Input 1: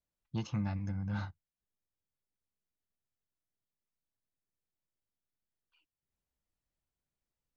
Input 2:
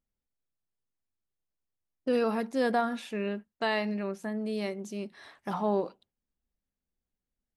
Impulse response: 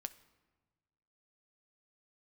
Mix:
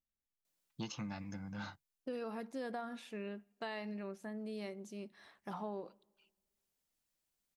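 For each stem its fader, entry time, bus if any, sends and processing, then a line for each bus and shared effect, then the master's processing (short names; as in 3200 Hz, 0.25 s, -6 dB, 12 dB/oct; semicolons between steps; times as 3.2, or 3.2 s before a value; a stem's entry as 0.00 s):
+0.5 dB, 0.45 s, no send, HPF 190 Hz 12 dB/oct; high shelf 2800 Hz +9 dB; vocal rider 0.5 s; auto duck -6 dB, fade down 1.20 s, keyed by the second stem
-11.5 dB, 0.00 s, send -9 dB, dry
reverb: on, RT60 1.3 s, pre-delay 6 ms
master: compressor, threshold -38 dBFS, peak gain reduction 6.5 dB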